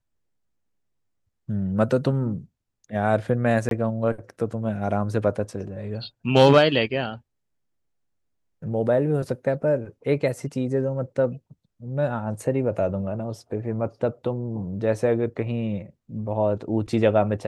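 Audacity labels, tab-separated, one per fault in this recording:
3.690000	3.710000	drop-out 22 ms

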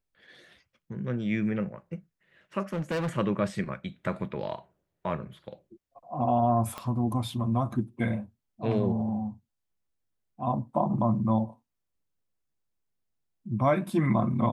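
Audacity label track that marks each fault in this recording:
2.730000	3.090000	clipping −26 dBFS
6.780000	6.780000	click −21 dBFS

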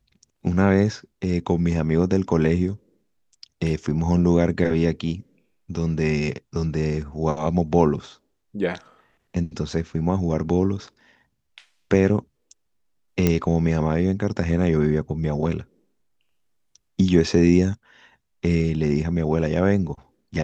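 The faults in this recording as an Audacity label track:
13.270000	13.270000	click −6 dBFS

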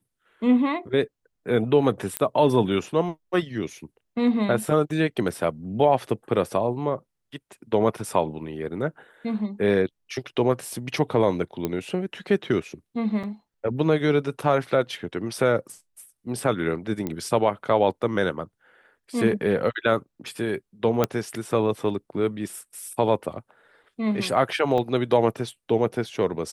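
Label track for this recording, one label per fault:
2.170000	2.170000	click −7 dBFS
11.650000	11.650000	click −13 dBFS
13.230000	13.240000	drop-out 5.7 ms
17.070000	17.070000	click −16 dBFS
21.040000	21.040000	click −7 dBFS
24.780000	24.780000	drop-out 3.7 ms

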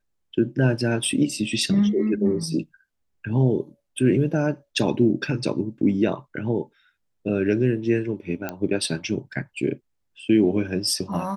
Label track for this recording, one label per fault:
8.490000	8.490000	click −14 dBFS

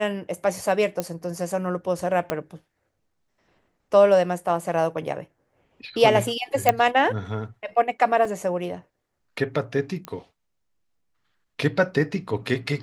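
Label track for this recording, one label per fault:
1.000000	1.000000	click −11 dBFS
2.300000	2.300000	click −10 dBFS
6.690000	6.690000	click −3 dBFS
8.250000	8.250000	drop-out 3.4 ms
10.050000	10.050000	click −18 dBFS

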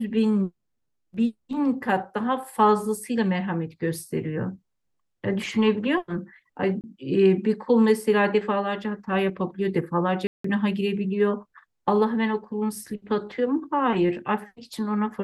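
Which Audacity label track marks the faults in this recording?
6.810000	6.840000	drop-out 28 ms
10.270000	10.440000	drop-out 174 ms

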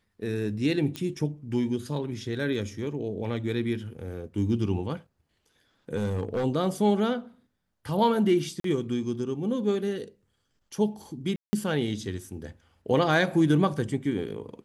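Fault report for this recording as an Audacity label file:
0.960000	0.960000	click −18 dBFS
5.970000	6.450000	clipping −23.5 dBFS
8.600000	8.640000	drop-out 43 ms
11.360000	11.530000	drop-out 170 ms

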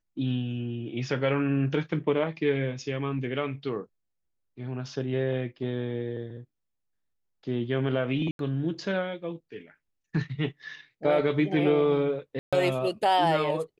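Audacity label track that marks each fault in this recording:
8.310000	8.390000	drop-out 82 ms
12.390000	12.530000	drop-out 136 ms

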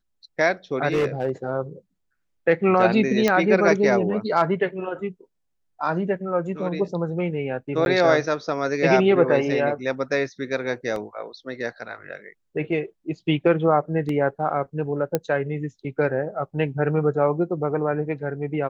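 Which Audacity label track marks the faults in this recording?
0.920000	1.300000	clipping −17 dBFS
3.280000	3.280000	click −6 dBFS
7.850000	7.860000	drop-out 11 ms
10.960000	10.960000	drop-out 2.1 ms
14.090000	14.090000	drop-out 2.7 ms
15.150000	15.150000	click −8 dBFS

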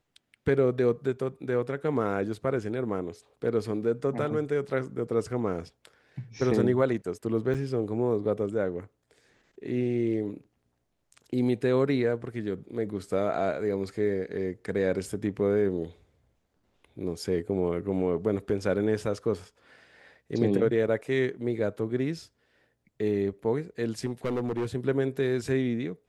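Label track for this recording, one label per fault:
7.540000	7.550000	drop-out 6.9 ms
24.060000	24.660000	clipping −25 dBFS

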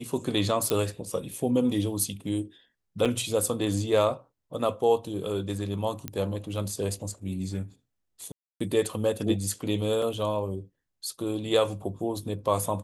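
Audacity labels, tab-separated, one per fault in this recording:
0.700000	0.700000	click −11 dBFS
3.050000	3.060000	drop-out 6.6 ms
6.080000	6.080000	click −15 dBFS
8.320000	8.610000	drop-out 285 ms
10.020000	10.020000	drop-out 2.6 ms

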